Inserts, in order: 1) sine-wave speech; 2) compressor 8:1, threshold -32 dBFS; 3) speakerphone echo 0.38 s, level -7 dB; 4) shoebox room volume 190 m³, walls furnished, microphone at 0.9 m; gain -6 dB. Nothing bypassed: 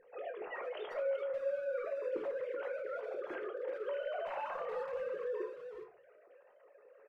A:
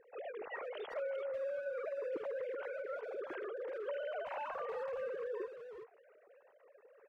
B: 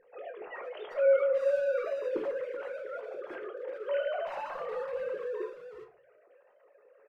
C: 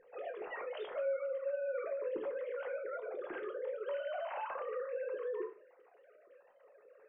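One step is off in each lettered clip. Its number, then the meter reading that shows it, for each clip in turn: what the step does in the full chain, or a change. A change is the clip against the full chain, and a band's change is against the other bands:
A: 4, echo-to-direct -4.0 dB to -14.0 dB; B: 2, mean gain reduction 3.0 dB; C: 3, momentary loudness spread change -2 LU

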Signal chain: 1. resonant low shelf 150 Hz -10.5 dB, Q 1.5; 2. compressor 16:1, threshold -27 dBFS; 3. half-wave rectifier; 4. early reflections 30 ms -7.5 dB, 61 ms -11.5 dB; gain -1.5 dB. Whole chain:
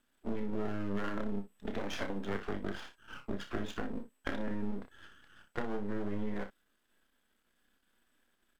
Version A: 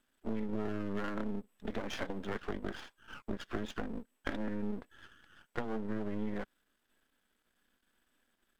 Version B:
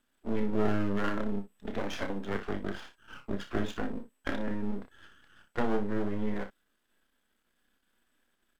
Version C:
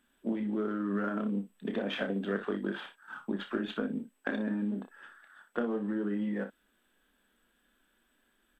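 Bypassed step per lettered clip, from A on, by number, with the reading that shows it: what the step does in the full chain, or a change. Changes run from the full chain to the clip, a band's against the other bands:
4, echo-to-direct -6.0 dB to none; 2, mean gain reduction 3.5 dB; 3, 1 kHz band -2.5 dB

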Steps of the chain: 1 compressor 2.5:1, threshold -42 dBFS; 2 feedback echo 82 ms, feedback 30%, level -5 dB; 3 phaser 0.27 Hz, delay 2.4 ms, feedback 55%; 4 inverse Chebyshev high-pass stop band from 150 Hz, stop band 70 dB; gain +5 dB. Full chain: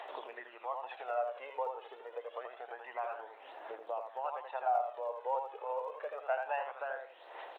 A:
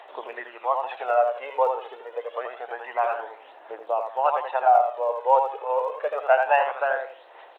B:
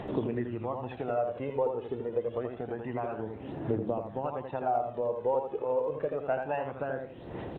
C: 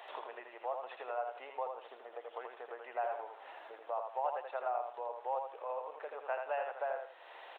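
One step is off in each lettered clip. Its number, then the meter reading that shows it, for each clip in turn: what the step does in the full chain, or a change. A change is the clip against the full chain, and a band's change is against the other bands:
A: 1, mean gain reduction 10.5 dB; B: 4, 250 Hz band +27.0 dB; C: 3, loudness change -1.5 LU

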